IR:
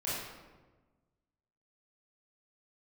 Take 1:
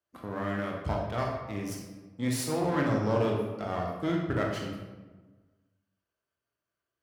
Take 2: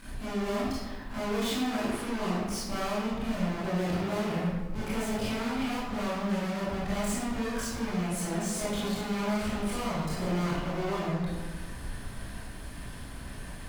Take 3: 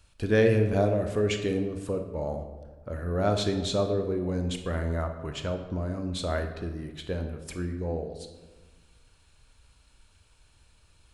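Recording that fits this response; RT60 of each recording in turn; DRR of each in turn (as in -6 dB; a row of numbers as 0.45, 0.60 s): 2; 1.3, 1.3, 1.3 s; -1.0, -10.0, 5.5 dB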